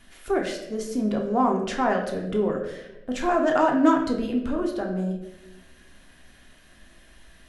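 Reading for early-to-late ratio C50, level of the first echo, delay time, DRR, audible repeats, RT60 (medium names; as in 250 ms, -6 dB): 6.0 dB, no echo, no echo, 0.5 dB, no echo, 1.0 s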